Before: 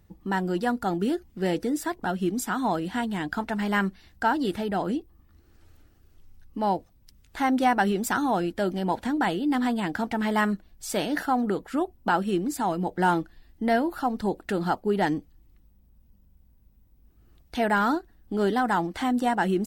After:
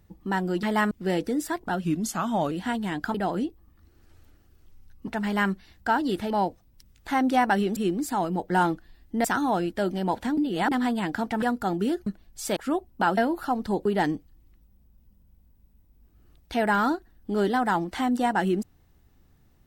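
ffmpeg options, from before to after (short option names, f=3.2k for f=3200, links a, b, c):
-filter_complex "[0:a]asplit=17[a][b][c][d][e][f][g][h][i][j][k][l][m][n][o][p][q];[a]atrim=end=0.632[r];[b]atrim=start=10.228:end=10.512[s];[c]atrim=start=1.268:end=2.204[t];[d]atrim=start=2.2:end=2.8,asetpts=PTS-STARTPTS,asetrate=39249,aresample=44100,atrim=end_sample=29730,asetpts=PTS-STARTPTS[u];[e]atrim=start=2.796:end=3.432[v];[f]atrim=start=4.658:end=6.592[w];[g]atrim=start=3.428:end=4.662[x];[h]atrim=start=6.588:end=8.052[y];[i]atrim=start=12.238:end=13.722[z];[j]atrim=start=8.048:end=9.182[aa];[k]atrim=start=9.178:end=9.522,asetpts=PTS-STARTPTS,areverse[ab];[l]atrim=start=9.518:end=10.232[ac];[m]atrim=start=0.628:end=1.272[ad];[n]atrim=start=10.508:end=11.012[ae];[o]atrim=start=11.628:end=12.242[af];[p]atrim=start=13.718:end=14.402[ag];[q]atrim=start=14.878[ah];[r][s]acrossfade=d=0.004:c1=hsin:c2=hsin[ai];[ai][t]acrossfade=d=0.004:c1=hsin:c2=hsin[aj];[aj][u]acrossfade=d=0.004:c1=hsin:c2=hsin[ak];[ak][v]acrossfade=d=0.004:c1=hsin:c2=hsin[al];[al][w]acrossfade=d=0.004:c1=hsin:c2=hsin[am];[am][x]acrossfade=d=0.004:c1=hsin:c2=hsin[an];[an][y]acrossfade=d=0.004:c1=hsin:c2=hsin[ao];[ao][z]acrossfade=d=0.004:c1=hsin:c2=hsin[ap];[ap][aa]acrossfade=d=0.004:c1=hsin:c2=hsin[aq];[aq][ab]acrossfade=d=0.004:c1=hsin:c2=hsin[ar];[ar][ac]acrossfade=d=0.004:c1=hsin:c2=hsin[as];[as][ad]acrossfade=d=0.004:c1=hsin:c2=hsin[at];[at][ae]acrossfade=d=0.004:c1=hsin:c2=hsin[au];[au][af]acrossfade=d=0.004:c1=hsin:c2=hsin[av];[av][ag]acrossfade=d=0.004:c1=hsin:c2=hsin[aw];[aw][ah]acrossfade=d=0.004:c1=hsin:c2=hsin"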